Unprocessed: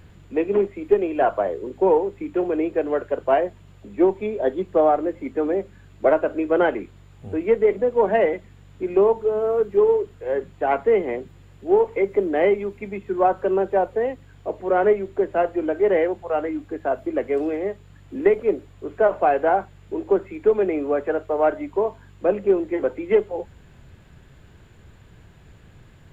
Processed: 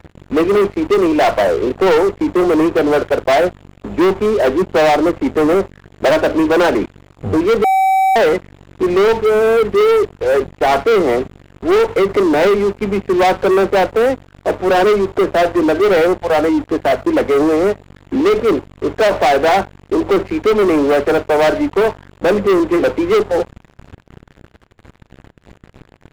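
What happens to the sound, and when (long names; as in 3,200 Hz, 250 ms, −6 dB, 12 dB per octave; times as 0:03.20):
0:07.64–0:08.16: beep over 766 Hz −21 dBFS
whole clip: high-shelf EQ 2,700 Hz −9.5 dB; leveller curve on the samples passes 5; level −2.5 dB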